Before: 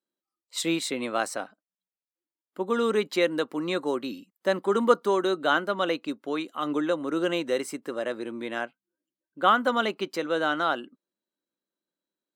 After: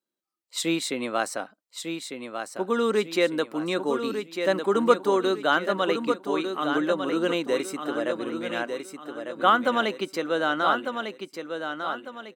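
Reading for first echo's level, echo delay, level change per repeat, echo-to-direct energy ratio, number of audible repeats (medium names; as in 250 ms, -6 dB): -7.0 dB, 1200 ms, -9.0 dB, -6.5 dB, 4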